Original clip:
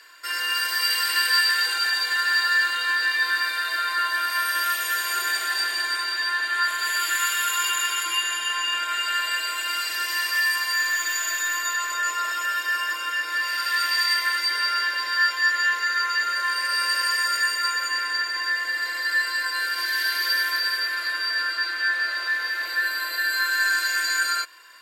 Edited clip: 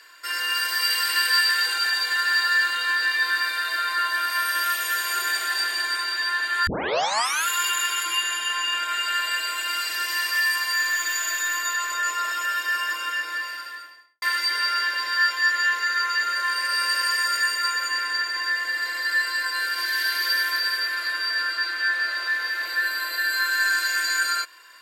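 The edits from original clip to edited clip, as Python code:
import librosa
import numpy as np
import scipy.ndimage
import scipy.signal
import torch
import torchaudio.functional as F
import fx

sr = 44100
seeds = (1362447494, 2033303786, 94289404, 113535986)

y = fx.studio_fade_out(x, sr, start_s=13.05, length_s=1.17)
y = fx.edit(y, sr, fx.tape_start(start_s=6.67, length_s=0.8), tone=tone)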